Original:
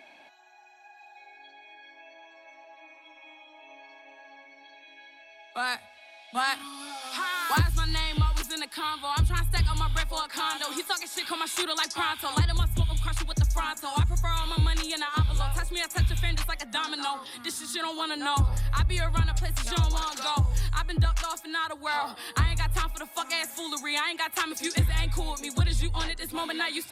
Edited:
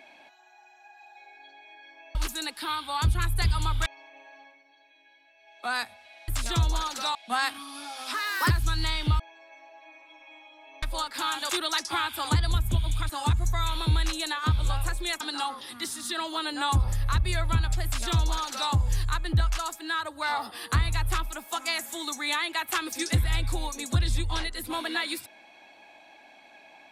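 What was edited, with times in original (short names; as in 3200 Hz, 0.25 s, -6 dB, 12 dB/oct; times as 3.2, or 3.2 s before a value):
2.15–3.78 swap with 8.3–10.01
4.28–5.58 dip -9 dB, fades 0.28 s
7.19–7.61 speed 115%
10.68–11.55 cut
13.15–13.8 cut
15.91–16.85 cut
19.49–20.36 copy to 6.2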